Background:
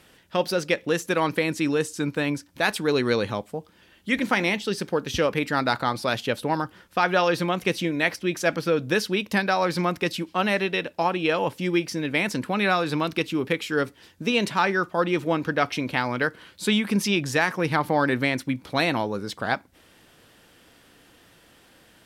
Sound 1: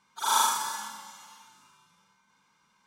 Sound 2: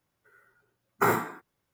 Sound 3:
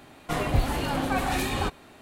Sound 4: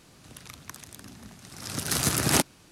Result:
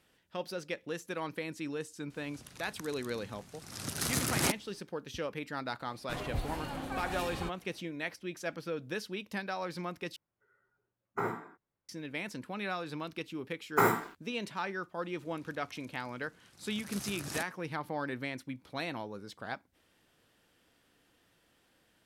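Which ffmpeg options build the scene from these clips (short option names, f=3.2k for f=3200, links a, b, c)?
-filter_complex "[4:a]asplit=2[a][b];[2:a]asplit=2[c][d];[0:a]volume=-14.5dB[e];[a]asoftclip=type=tanh:threshold=-13.5dB[f];[c]lowpass=f=1.7k:p=1[g];[d]aeval=exprs='sgn(val(0))*max(abs(val(0))-0.00299,0)':c=same[h];[e]asplit=2[i][j];[i]atrim=end=10.164[k];[g]atrim=end=1.73,asetpts=PTS-STARTPTS,volume=-9dB[l];[j]atrim=start=11.886[m];[f]atrim=end=2.71,asetpts=PTS-STARTPTS,volume=-6dB,afade=t=in:d=0.004:c=hsin,afade=t=out:st=2.706:d=0.004:c=hsin,adelay=2100[n];[3:a]atrim=end=2.01,asetpts=PTS-STARTPTS,volume=-12dB,afade=t=in:d=0.004:c=hsin,afade=t=out:st=2.006:d=0.004:c=hsin,adelay=5800[o];[h]atrim=end=1.73,asetpts=PTS-STARTPTS,volume=-1.5dB,afade=t=in:d=0.004:c=hsin,afade=t=out:st=1.726:d=0.004:c=hsin,adelay=12760[p];[b]atrim=end=2.71,asetpts=PTS-STARTPTS,volume=-17.5dB,afade=t=in:d=0.004:c=hsin,afade=t=out:st=2.706:d=0.004:c=hsin,adelay=15010[q];[k][l]acrossfade=d=0.004:c1=hsin:c2=hsin[r];[r][m]acrossfade=d=0.004:c1=hsin:c2=hsin[s];[s][n][o][p][q]amix=inputs=5:normalize=0"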